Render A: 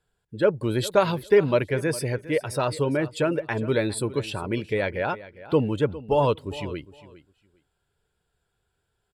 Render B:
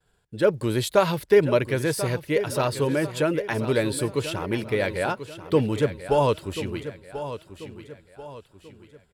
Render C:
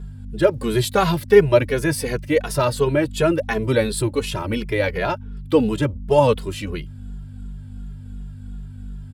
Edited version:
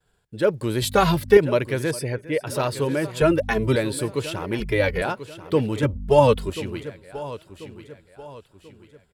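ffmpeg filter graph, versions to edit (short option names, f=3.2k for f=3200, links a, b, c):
-filter_complex "[2:a]asplit=4[a][b][c][d];[1:a]asplit=6[e][f][g][h][i][j];[e]atrim=end=0.822[k];[a]atrim=start=0.818:end=1.372[l];[f]atrim=start=1.368:end=1.912[m];[0:a]atrim=start=1.908:end=2.472[n];[g]atrim=start=2.468:end=3.212[o];[b]atrim=start=3.208:end=3.762[p];[h]atrim=start=3.758:end=4.602[q];[c]atrim=start=4.598:end=5.022[r];[i]atrim=start=5.018:end=5.832[s];[d]atrim=start=5.828:end=6.502[t];[j]atrim=start=6.498[u];[k][l]acrossfade=d=0.004:c1=hsin:c2=hsin[v];[v][m]acrossfade=d=0.004:c1=hsin:c2=hsin[w];[w][n]acrossfade=d=0.004:c1=hsin:c2=hsin[x];[x][o]acrossfade=d=0.004:c1=hsin:c2=hsin[y];[y][p]acrossfade=d=0.004:c1=hsin:c2=hsin[z];[z][q]acrossfade=d=0.004:c1=hsin:c2=hsin[aa];[aa][r]acrossfade=d=0.004:c1=hsin:c2=hsin[ab];[ab][s]acrossfade=d=0.004:c1=hsin:c2=hsin[ac];[ac][t]acrossfade=d=0.004:c1=hsin:c2=hsin[ad];[ad][u]acrossfade=d=0.004:c1=hsin:c2=hsin"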